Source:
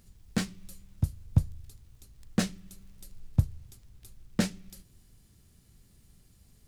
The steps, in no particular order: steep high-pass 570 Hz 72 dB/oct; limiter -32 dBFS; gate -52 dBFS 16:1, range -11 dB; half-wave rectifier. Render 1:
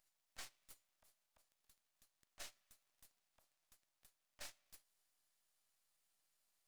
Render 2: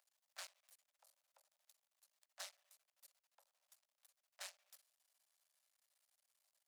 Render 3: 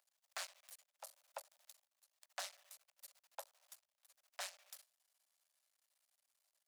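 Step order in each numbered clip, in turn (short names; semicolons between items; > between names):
limiter > steep high-pass > half-wave rectifier > gate; half-wave rectifier > limiter > steep high-pass > gate; half-wave rectifier > gate > steep high-pass > limiter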